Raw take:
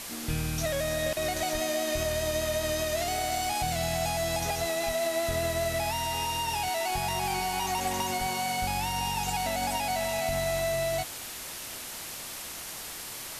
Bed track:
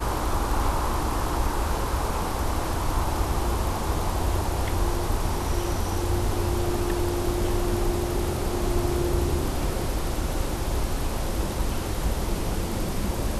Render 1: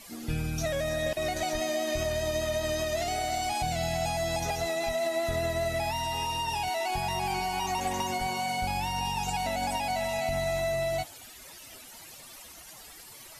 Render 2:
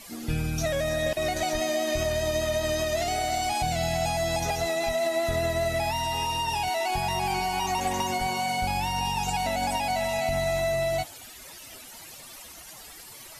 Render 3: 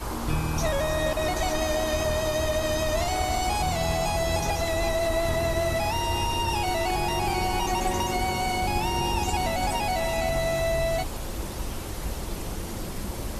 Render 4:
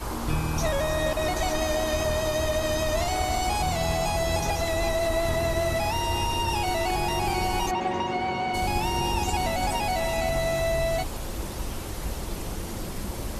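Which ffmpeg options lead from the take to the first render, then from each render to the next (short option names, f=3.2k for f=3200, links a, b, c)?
-af "afftdn=nr=14:nf=-40"
-af "volume=3dB"
-filter_complex "[1:a]volume=-6dB[a];[0:a][a]amix=inputs=2:normalize=0"
-filter_complex "[0:a]asplit=3[a][b][c];[a]afade=t=out:st=7.7:d=0.02[d];[b]highpass=130,lowpass=3k,afade=t=in:st=7.7:d=0.02,afade=t=out:st=8.53:d=0.02[e];[c]afade=t=in:st=8.53:d=0.02[f];[d][e][f]amix=inputs=3:normalize=0"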